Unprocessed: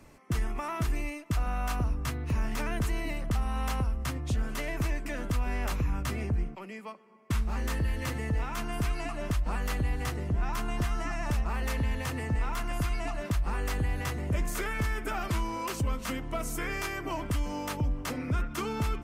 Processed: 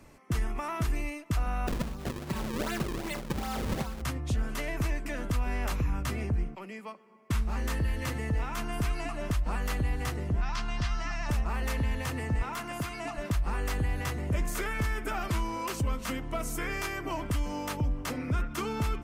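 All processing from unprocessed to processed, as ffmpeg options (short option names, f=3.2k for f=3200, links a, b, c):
-filter_complex "[0:a]asettb=1/sr,asplit=3[a][b][c];[a]atrim=end=1.674[d];[b]atrim=start=1.67:end=4.02,asetpts=PTS-STARTPTS,afade=t=in:d=0.004:c=qsin,afade=t=out:st=2.346:d=0.004:c=qsin,highpass=f=180:p=1,aecho=1:1:5.3:0.94,atrim=end_sample=103635,acrusher=samples=36:mix=1:aa=0.000001:lfo=1:lforange=57.6:lforate=2.6[e];[c]atrim=start=4.016[f];[d][e]acrossfade=d=0.004:c1=hsin:c2=qsin[g];[g][f]acrossfade=d=0.004:c1=qsin:c2=hsin,asettb=1/sr,asplit=3[h][i][j];[h]atrim=end=10.414[k];[i]atrim=start=10.41:end=11.29,asetpts=PTS-STARTPTS,afade=t=in:d=0.004:c=qsin,afade=t=out:st=0.876:d=0.004:c=qsin,lowpass=f=4.9k:t=q:w=2,equalizer=f=390:w=1:g=-9.5[l];[j]atrim=start=11.286[m];[k][l]acrossfade=d=0.004:c1=hsin:c2=qsin[n];[n][m]acrossfade=d=0.004:c1=qsin:c2=hsin,asettb=1/sr,asplit=3[o][p][q];[o]atrim=end=12.424[r];[p]atrim=start=12.42:end=13.18,asetpts=PTS-STARTPTS,afade=t=in:d=0.004:c=qsin,afade=t=out:st=0.756:d=0.004:c=qsin,highpass=120,asoftclip=type=hard:threshold=-26dB[s];[q]atrim=start=13.176[t];[r][s]acrossfade=d=0.004:c1=hsin:c2=qsin[u];[u][t]acrossfade=d=0.004:c1=qsin:c2=hsin"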